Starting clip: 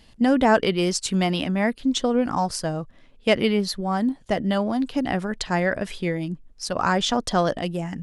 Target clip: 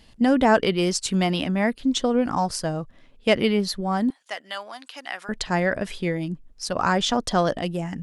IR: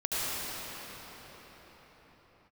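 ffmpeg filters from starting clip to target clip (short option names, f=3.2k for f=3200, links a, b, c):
-filter_complex "[0:a]asettb=1/sr,asplit=3[a][b][c];[a]atrim=end=4.104[d];[b]atrim=start=4.1:end=5.29,asetpts=PTS-STARTPTS,afade=t=in:d=0.004:c=qsin,afade=t=out:st=1.186:d=0.004:c=qsin,highpass=1.2k[e];[c]atrim=start=5.286[f];[d][e]acrossfade=d=0.004:c1=hsin:c2=qsin[g];[g][f]acrossfade=d=0.004:c1=qsin:c2=hsin"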